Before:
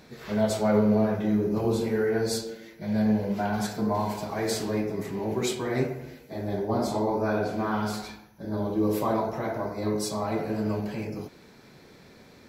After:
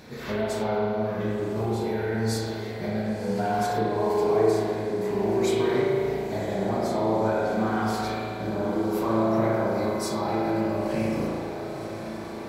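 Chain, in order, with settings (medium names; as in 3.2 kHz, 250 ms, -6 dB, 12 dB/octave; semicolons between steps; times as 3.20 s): 3.69–4.97 s: peaking EQ 420 Hz +13.5 dB 0.97 oct; compression, threshold -31 dBFS, peak gain reduction 16 dB; echo that smears into a reverb 1029 ms, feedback 74%, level -12 dB; spring tank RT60 2 s, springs 36 ms, chirp 20 ms, DRR -3.5 dB; trim +4 dB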